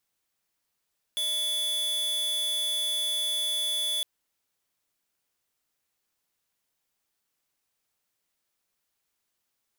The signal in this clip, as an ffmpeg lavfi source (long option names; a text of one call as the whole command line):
ffmpeg -f lavfi -i "aevalsrc='0.0376*(2*lt(mod(3440*t,1),0.5)-1)':duration=2.86:sample_rate=44100" out.wav